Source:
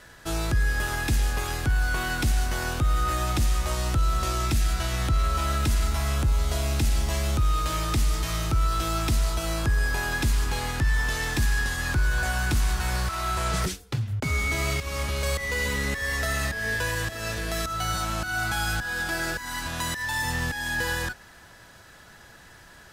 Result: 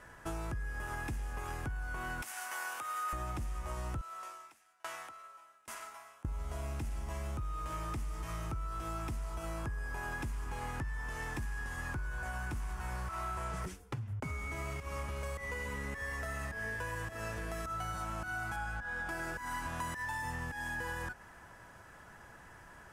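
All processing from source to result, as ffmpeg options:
ffmpeg -i in.wav -filter_complex "[0:a]asettb=1/sr,asplit=3[link_01][link_02][link_03];[link_01]atrim=end=2.224[link_04];[link_02]atrim=start=2.22:end=3.13,asetpts=PTS-STARTPTS,afade=type=in:duration=0.004:curve=qsin,afade=type=out:start_time=0.906:duration=0.004:curve=qsin,highpass=1000,highshelf=frequency=9400:gain=8.5[link_05];[link_03]atrim=start=3.126[link_06];[link_04][link_05]acrossfade=duration=0.004:curve1=hsin:curve2=qsin[link_07];[link_07][link_06]acrossfade=duration=0.004:curve1=qsin:curve2=hsin,asettb=1/sr,asplit=3[link_08][link_09][link_10];[link_08]atrim=end=4.014[link_11];[link_09]atrim=start=4.01:end=6.25,asetpts=PTS-STARTPTS,afade=type=in:duration=0.004:curve=qsin,afade=type=out:start_time=2.236:duration=0.004:curve=qsin,highpass=730,aeval=exprs='val(0)*pow(10,-34*if(lt(mod(1.2*n/s,1),2*abs(1.2)/1000),1-mod(1.2*n/s,1)/(2*abs(1.2)/1000),(mod(1.2*n/s,1)-2*abs(1.2)/1000)/(1-2*abs(1.2)/1000))/20)':channel_layout=same[link_12];[link_10]atrim=start=6.246[link_13];[link_11][link_12]acrossfade=duration=0.004:curve1=hsin:curve2=qsin[link_14];[link_14][link_13]acrossfade=duration=0.004:curve1=qsin:curve2=hsin,asettb=1/sr,asplit=3[link_15][link_16][link_17];[link_15]atrim=end=18.564[link_18];[link_16]atrim=start=18.56:end=19.09,asetpts=PTS-STARTPTS,afade=type=in:duration=0.004:curve=qsin,afade=type=out:start_time=0.526:duration=0.004:curve=qsin,lowpass=frequency=3100:poles=1,equalizer=frequency=310:width_type=o:width=0.24:gain=-13.5,aecho=1:1:3.5:0.36,atrim=end_sample=23373[link_19];[link_17]atrim=start=19.086[link_20];[link_18][link_19]acrossfade=duration=0.004:curve1=hsin:curve2=qsin[link_21];[link_21][link_20]acrossfade=duration=0.004:curve1=qsin:curve2=hsin,highshelf=frequency=5700:gain=-9.5,acompressor=threshold=-32dB:ratio=6,equalizer=frequency=1000:width_type=o:width=0.67:gain=5,equalizer=frequency=4000:width_type=o:width=0.67:gain=-11,equalizer=frequency=10000:width_type=o:width=0.67:gain=4,volume=-4.5dB" out.wav

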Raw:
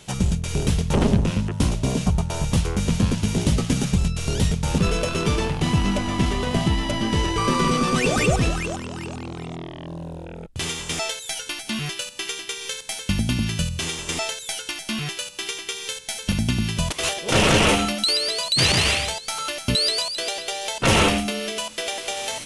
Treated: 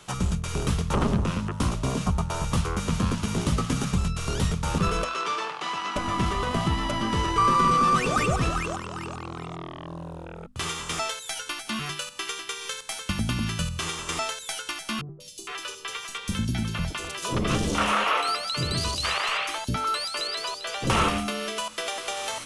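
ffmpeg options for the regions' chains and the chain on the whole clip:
ffmpeg -i in.wav -filter_complex "[0:a]asettb=1/sr,asplit=3[link_01][link_02][link_03];[link_01]atrim=end=5.044[link_04];[link_02]atrim=start=5.04:end=5.96,asetpts=PTS-STARTPTS,afade=type=in:duration=0.004:curve=qsin,afade=type=out:start_time=0.916:duration=0.004:curve=qsin,highpass=360,lowpass=6100,lowshelf=frequency=470:gain=-11[link_05];[link_03]atrim=start=5.956[link_06];[link_04][link_05]acrossfade=duration=0.004:curve1=hsin:curve2=qsin[link_07];[link_07][link_06]acrossfade=duration=0.004:curve1=qsin:curve2=hsin,asettb=1/sr,asplit=3[link_08][link_09][link_10];[link_08]atrim=end=15.014[link_11];[link_09]atrim=start=15.01:end=20.9,asetpts=PTS-STARTPTS,afade=type=in:duration=0.004:curve=qsin,afade=type=out:start_time=5.886:duration=0.004:curve=qsin,equalizer=frequency=9800:width=0.99:gain=-4.5,acrossover=split=480|4400[link_12][link_13][link_14];[link_14]adelay=190[link_15];[link_13]adelay=460[link_16];[link_12][link_16][link_15]amix=inputs=3:normalize=0,atrim=end_sample=259749[link_17];[link_10]atrim=start=20.896[link_18];[link_11][link_17]acrossfade=duration=0.004:curve1=hsin:curve2=qsin[link_19];[link_19][link_18]acrossfade=duration=0.004:curve1=qsin:curve2=hsin,bandreject=frequency=50:width_type=h:width=6,bandreject=frequency=100:width_type=h:width=6,bandreject=frequency=150:width_type=h:width=6,bandreject=frequency=200:width_type=h:width=6,bandreject=frequency=250:width_type=h:width=6,acrossover=split=220[link_20][link_21];[link_21]acompressor=threshold=-23dB:ratio=2[link_22];[link_20][link_22]amix=inputs=2:normalize=0,equalizer=frequency=1200:width=2.3:gain=12,volume=-4dB" out.wav

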